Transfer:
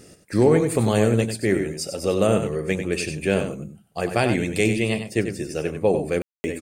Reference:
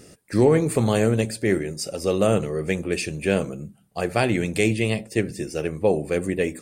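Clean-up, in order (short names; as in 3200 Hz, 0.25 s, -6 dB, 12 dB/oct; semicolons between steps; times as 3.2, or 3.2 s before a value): room tone fill 6.22–6.44; inverse comb 95 ms -8.5 dB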